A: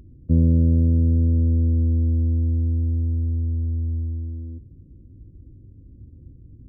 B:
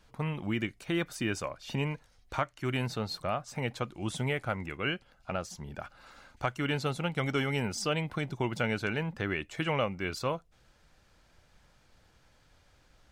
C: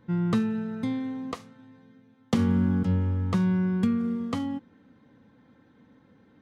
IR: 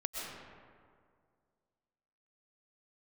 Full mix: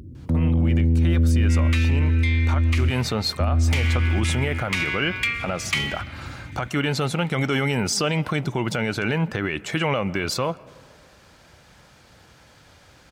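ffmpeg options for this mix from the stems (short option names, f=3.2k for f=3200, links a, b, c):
-filter_complex "[0:a]volume=1dB,asplit=3[a][b][c];[a]atrim=end=2.9,asetpts=PTS-STARTPTS,afade=t=out:st=2.896:d=0.004:c=hsin[d];[b]atrim=start=2.9:end=3.4,asetpts=PTS-STARTPTS,volume=0[e];[c]atrim=start=3.4,asetpts=PTS-STARTPTS,afade=t=in:d=0.004:c=hsin[f];[d][e][f]concat=n=3:v=0:a=1,asplit=2[g][h];[h]volume=-19dB[i];[1:a]adelay=150,volume=-1.5dB,asplit=2[j][k];[k]volume=-20dB[l];[2:a]highpass=f=2.3k:t=q:w=6.6,asoftclip=type=hard:threshold=-27dB,adelay=1400,volume=0dB,asplit=2[m][n];[n]volume=-6dB[o];[j][m]amix=inputs=2:normalize=0,dynaudnorm=f=170:g=3:m=8dB,alimiter=limit=-19dB:level=0:latency=1:release=86,volume=0dB[p];[3:a]atrim=start_sample=2205[q];[i][l][o]amix=inputs=3:normalize=0[r];[r][q]afir=irnorm=-1:irlink=0[s];[g][p][s]amix=inputs=3:normalize=0,highpass=73,acontrast=78,alimiter=limit=-13.5dB:level=0:latency=1:release=50"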